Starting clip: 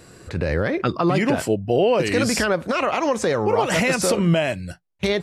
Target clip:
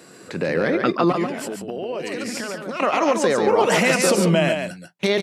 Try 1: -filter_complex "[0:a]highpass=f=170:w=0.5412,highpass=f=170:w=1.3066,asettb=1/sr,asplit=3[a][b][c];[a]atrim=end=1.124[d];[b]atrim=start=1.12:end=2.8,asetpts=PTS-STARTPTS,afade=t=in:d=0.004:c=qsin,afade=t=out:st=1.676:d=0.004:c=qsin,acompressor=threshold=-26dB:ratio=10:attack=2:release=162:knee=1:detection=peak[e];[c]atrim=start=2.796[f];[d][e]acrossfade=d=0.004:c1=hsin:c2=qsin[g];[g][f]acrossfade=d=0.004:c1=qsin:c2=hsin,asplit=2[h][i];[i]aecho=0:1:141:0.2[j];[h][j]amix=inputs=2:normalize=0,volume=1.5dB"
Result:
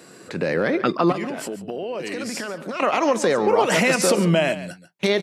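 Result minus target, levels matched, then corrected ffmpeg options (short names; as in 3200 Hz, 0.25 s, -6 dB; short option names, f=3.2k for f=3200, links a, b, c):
echo-to-direct -8.5 dB
-filter_complex "[0:a]highpass=f=170:w=0.5412,highpass=f=170:w=1.3066,asettb=1/sr,asplit=3[a][b][c];[a]atrim=end=1.124[d];[b]atrim=start=1.12:end=2.8,asetpts=PTS-STARTPTS,afade=t=in:d=0.004:c=qsin,afade=t=out:st=1.676:d=0.004:c=qsin,acompressor=threshold=-26dB:ratio=10:attack=2:release=162:knee=1:detection=peak[e];[c]atrim=start=2.796[f];[d][e]acrossfade=d=0.004:c1=hsin:c2=qsin[g];[g][f]acrossfade=d=0.004:c1=qsin:c2=hsin,asplit=2[h][i];[i]aecho=0:1:141:0.531[j];[h][j]amix=inputs=2:normalize=0,volume=1.5dB"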